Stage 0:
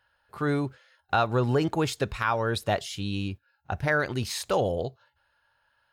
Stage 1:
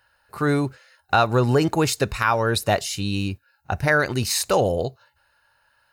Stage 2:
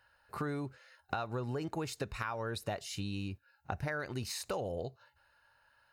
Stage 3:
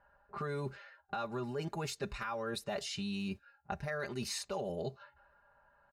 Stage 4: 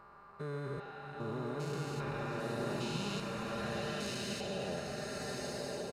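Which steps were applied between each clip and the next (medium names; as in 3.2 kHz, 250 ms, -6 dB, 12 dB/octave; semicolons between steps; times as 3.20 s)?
treble shelf 5.2 kHz +8.5 dB; band-stop 3.3 kHz, Q 6.3; trim +5.5 dB
compression 6:1, threshold -30 dBFS, peak gain reduction 15.5 dB; treble shelf 5.1 kHz -6 dB; trim -4.5 dB
level-controlled noise filter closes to 890 Hz, open at -34.5 dBFS; comb 5 ms, depth 82%; reverse; compression, threshold -41 dBFS, peak gain reduction 13 dB; reverse; trim +5.5 dB
spectrogram pixelated in time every 400 ms; speakerphone echo 120 ms, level -7 dB; swelling reverb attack 1350 ms, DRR -2 dB; trim +1 dB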